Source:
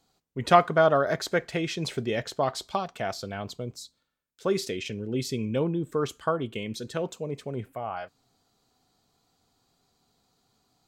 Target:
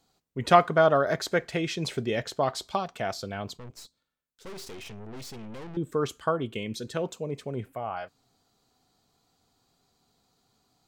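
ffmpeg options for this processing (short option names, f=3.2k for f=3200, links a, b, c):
-filter_complex "[0:a]asettb=1/sr,asplit=3[a][b][c];[a]atrim=end=3.574[d];[b]atrim=start=3.57:end=5.77,asetpts=PTS-STARTPTS,afade=t=in:d=0.004:c=qsin,afade=t=out:st=2.196:d=0.004:c=qsin,aeval=exprs='(tanh(100*val(0)+0.7)-tanh(0.7))/100':c=same[e];[c]atrim=start=5.766[f];[d][e]acrossfade=d=0.004:c1=hsin:c2=qsin[g];[g][f]acrossfade=d=0.004:c1=qsin:c2=hsin"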